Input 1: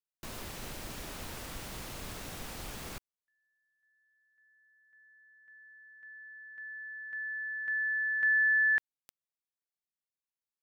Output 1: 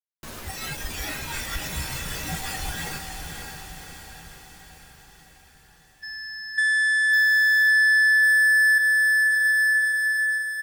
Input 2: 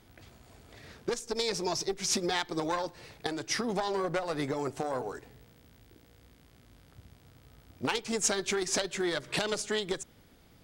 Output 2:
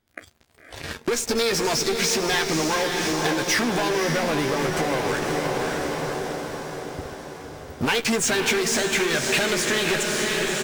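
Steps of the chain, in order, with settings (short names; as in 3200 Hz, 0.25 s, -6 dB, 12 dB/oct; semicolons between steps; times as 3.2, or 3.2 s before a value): bell 1600 Hz +4.5 dB 0.23 oct; in parallel at -6 dB: fuzz box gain 42 dB, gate -48 dBFS; on the sum: spectral noise reduction 15 dB; doubler 13 ms -9 dB; on a send: diffused feedback echo 0.557 s, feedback 59%, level -4.5 dB; on the sum: compressor 6:1, threshold -21 dBFS; dynamic EQ 2300 Hz, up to +6 dB, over -36 dBFS, Q 1.3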